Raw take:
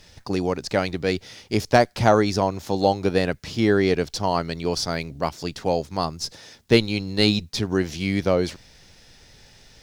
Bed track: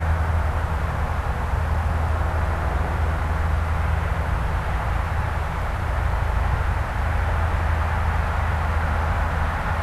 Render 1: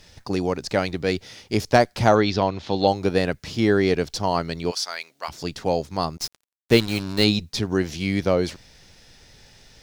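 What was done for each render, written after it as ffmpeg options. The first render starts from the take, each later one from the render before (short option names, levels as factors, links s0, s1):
-filter_complex "[0:a]asettb=1/sr,asplit=3[s0][s1][s2];[s0]atrim=end=2.154[s3];[s1]atrim=start=2.15:end=2.88,asetpts=PTS-STARTPTS,afade=t=in:d=0.004:c=qsin,afade=t=out:st=0.726:d=0.004:c=qsin,lowpass=f=3600:t=q:w=2.1[s4];[s2]atrim=start=2.876[s5];[s3][s4]acrossfade=d=0.004:c1=hsin:c2=qsin[s6];[s6][s5]acrossfade=d=0.004:c1=qsin:c2=hsin,asplit=3[s7][s8][s9];[s7]afade=t=out:st=4.7:d=0.02[s10];[s8]highpass=1100,afade=t=in:st=4.7:d=0.02,afade=t=out:st=5.28:d=0.02[s11];[s9]afade=t=in:st=5.28:d=0.02[s12];[s10][s11][s12]amix=inputs=3:normalize=0,asettb=1/sr,asplit=3[s13][s14][s15];[s13]atrim=end=6.174[s16];[s14]atrim=start=6.17:end=7.24,asetpts=PTS-STARTPTS,afade=t=in:d=0.004:c=qsin,afade=t=out:st=1.066:d=0.004:c=qsin,acrusher=bits=4:mix=0:aa=0.5[s17];[s15]atrim=start=7.236[s18];[s16][s17]acrossfade=d=0.004:c1=hsin:c2=qsin[s19];[s19][s18]acrossfade=d=0.004:c1=qsin:c2=hsin"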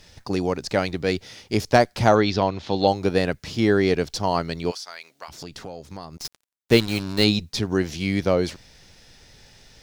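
-filter_complex "[0:a]asettb=1/sr,asplit=3[s0][s1][s2];[s0]atrim=end=4.714[s3];[s1]atrim=start=4.71:end=6.25,asetpts=PTS-STARTPTS,afade=t=in:d=0.004:c=qsin,afade=t=out:st=1.536:d=0.004:c=qsin,acompressor=threshold=0.0224:ratio=5:attack=3.2:release=140:knee=1:detection=peak[s4];[s2]atrim=start=6.246[s5];[s3][s4]acrossfade=d=0.004:c1=hsin:c2=qsin[s6];[s6][s5]acrossfade=d=0.004:c1=qsin:c2=hsin"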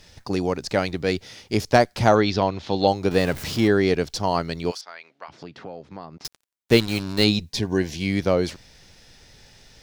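-filter_complex "[0:a]asettb=1/sr,asplit=3[s0][s1][s2];[s0]atrim=end=3.114[s3];[s1]atrim=start=3.11:end=3.68,asetpts=PTS-STARTPTS,afade=t=in:d=0.004:c=qsin,afade=t=out:st=0.566:d=0.004:c=qsin,aeval=exprs='val(0)+0.5*0.0316*sgn(val(0))':c=same[s4];[s2]atrim=start=3.676[s5];[s3][s4]acrossfade=d=0.004:c1=hsin:c2=qsin[s6];[s6][s5]acrossfade=d=0.004:c1=qsin:c2=hsin,asettb=1/sr,asplit=3[s7][s8][s9];[s7]atrim=end=4.814[s10];[s8]atrim=start=4.81:end=6.25,asetpts=PTS-STARTPTS,afade=t=in:d=0.004:c=qsin,afade=t=out:st=1.436:d=0.004:c=qsin,highpass=130,lowpass=2700[s11];[s9]atrim=start=6.246[s12];[s10][s11]acrossfade=d=0.004:c1=hsin:c2=qsin[s13];[s13][s12]acrossfade=d=0.004:c1=qsin:c2=hsin,asettb=1/sr,asplit=3[s14][s15][s16];[s14]atrim=end=7.454[s17];[s15]atrim=start=7.45:end=8.11,asetpts=PTS-STARTPTS,afade=t=in:d=0.004:c=qsin,afade=t=out:st=0.656:d=0.004:c=qsin,asuperstop=centerf=1300:order=12:qfactor=5.2[s18];[s16]atrim=start=8.106[s19];[s17][s18]acrossfade=d=0.004:c1=hsin:c2=qsin[s20];[s20][s19]acrossfade=d=0.004:c1=qsin:c2=hsin"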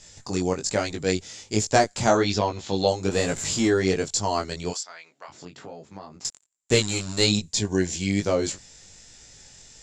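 -af "lowpass=f=7300:t=q:w=16,flanger=delay=18.5:depth=3.8:speed=1.2"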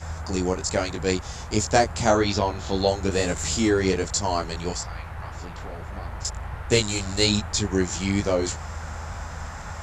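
-filter_complex "[1:a]volume=0.251[s0];[0:a][s0]amix=inputs=2:normalize=0"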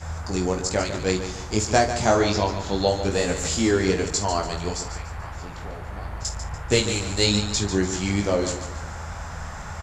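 -filter_complex "[0:a]asplit=2[s0][s1];[s1]adelay=49,volume=0.266[s2];[s0][s2]amix=inputs=2:normalize=0,asplit=2[s3][s4];[s4]aecho=0:1:145|290|435|580:0.316|0.123|0.0481|0.0188[s5];[s3][s5]amix=inputs=2:normalize=0"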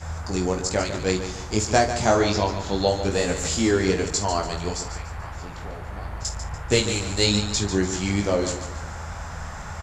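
-af anull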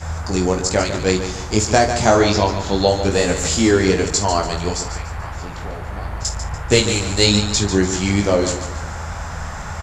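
-af "volume=2,alimiter=limit=0.794:level=0:latency=1"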